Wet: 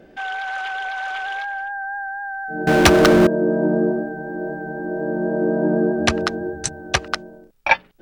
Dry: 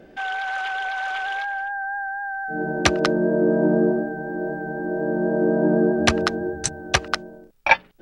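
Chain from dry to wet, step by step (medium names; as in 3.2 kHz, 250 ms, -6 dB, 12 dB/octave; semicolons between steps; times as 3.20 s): 2.67–3.27 s: power-law waveshaper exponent 0.5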